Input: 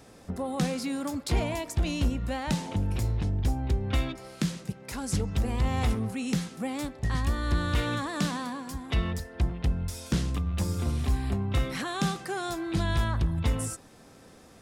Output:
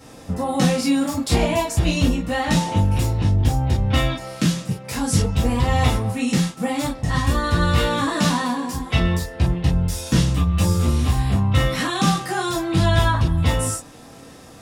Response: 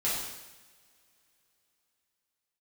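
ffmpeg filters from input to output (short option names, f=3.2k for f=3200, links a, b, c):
-filter_complex "[0:a]asplit=3[a][b][c];[a]afade=t=out:st=5.26:d=0.02[d];[b]agate=range=-33dB:threshold=-31dB:ratio=3:detection=peak,afade=t=in:st=5.26:d=0.02,afade=t=out:st=6.55:d=0.02[e];[c]afade=t=in:st=6.55:d=0.02[f];[d][e][f]amix=inputs=3:normalize=0[g];[1:a]atrim=start_sample=2205,atrim=end_sample=3969,asetrate=61740,aresample=44100[h];[g][h]afir=irnorm=-1:irlink=0,volume=7dB"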